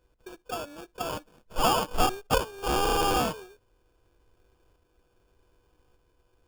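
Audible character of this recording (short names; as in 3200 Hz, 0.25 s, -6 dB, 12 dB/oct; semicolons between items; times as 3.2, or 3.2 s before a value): a buzz of ramps at a fixed pitch in blocks of 8 samples; tremolo saw up 0.84 Hz, depth 35%; aliases and images of a low sample rate 2000 Hz, jitter 0%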